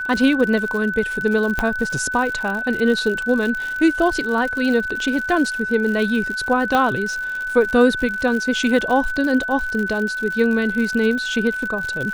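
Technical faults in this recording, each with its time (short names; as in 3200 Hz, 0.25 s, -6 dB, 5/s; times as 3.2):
crackle 92/s -25 dBFS
tone 1500 Hz -23 dBFS
1.59 pop -7 dBFS
6.75 pop -7 dBFS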